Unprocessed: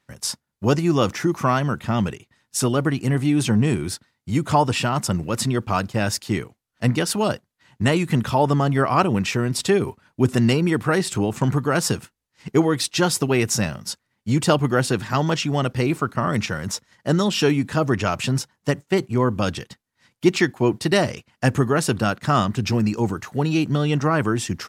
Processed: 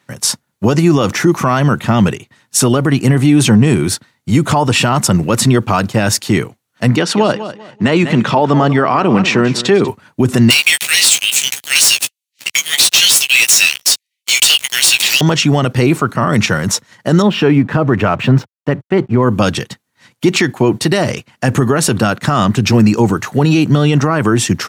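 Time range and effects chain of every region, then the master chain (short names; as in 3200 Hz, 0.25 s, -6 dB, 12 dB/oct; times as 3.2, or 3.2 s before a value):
6.96–9.88 BPF 170–4900 Hz + feedback echo 0.194 s, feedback 26%, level -15.5 dB
10.5–15.21 steep high-pass 2300 Hz 48 dB/oct + sample leveller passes 5 + doubler 15 ms -6 dB
17.22–19.23 LPF 2200 Hz + backlash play -47 dBFS
whole clip: HPF 95 Hz 24 dB/oct; notch 5000 Hz, Q 17; maximiser +13.5 dB; gain -1 dB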